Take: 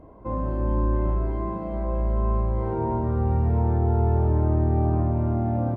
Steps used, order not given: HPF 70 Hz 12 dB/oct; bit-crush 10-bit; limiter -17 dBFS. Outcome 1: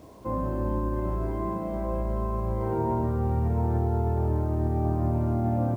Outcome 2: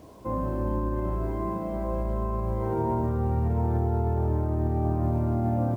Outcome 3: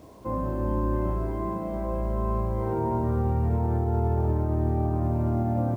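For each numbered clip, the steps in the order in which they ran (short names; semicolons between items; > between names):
limiter > HPF > bit-crush; bit-crush > limiter > HPF; HPF > bit-crush > limiter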